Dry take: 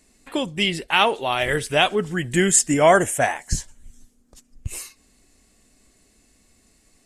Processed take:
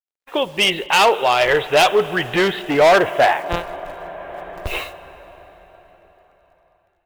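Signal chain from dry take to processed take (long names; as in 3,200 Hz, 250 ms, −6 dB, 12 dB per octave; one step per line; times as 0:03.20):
0:03.45–0:04.67: samples sorted by size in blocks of 256 samples
Chebyshev low-pass with heavy ripple 3,900 Hz, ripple 3 dB
bit reduction 9 bits
downward expander −40 dBFS
dense smooth reverb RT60 4.7 s, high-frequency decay 0.8×, DRR 17.5 dB
automatic gain control gain up to 13.5 dB
hard clipping −15.5 dBFS, distortion −7 dB
low shelf with overshoot 330 Hz −8 dB, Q 1.5
level +5.5 dB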